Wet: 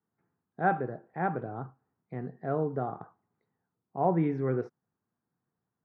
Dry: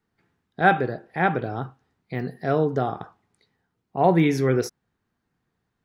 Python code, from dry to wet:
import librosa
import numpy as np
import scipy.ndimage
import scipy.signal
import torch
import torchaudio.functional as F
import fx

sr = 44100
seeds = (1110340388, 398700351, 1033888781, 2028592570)

y = scipy.signal.sosfilt(scipy.signal.cheby1(2, 1.0, [120.0, 1200.0], 'bandpass', fs=sr, output='sos'), x)
y = y * 10.0 ** (-7.5 / 20.0)